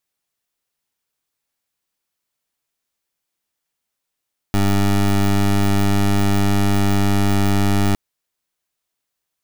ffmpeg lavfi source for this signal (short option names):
-f lavfi -i "aevalsrc='0.168*(2*lt(mod(99.8*t,1),0.19)-1)':d=3.41:s=44100"